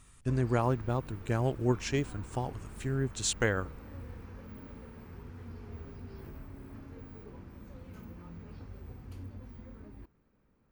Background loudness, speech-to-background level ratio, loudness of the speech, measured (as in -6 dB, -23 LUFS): -48.0 LUFS, 16.0 dB, -32.0 LUFS